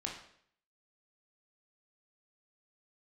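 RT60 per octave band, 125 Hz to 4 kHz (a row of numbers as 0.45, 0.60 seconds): 0.65, 0.65, 0.65, 0.60, 0.60, 0.60 seconds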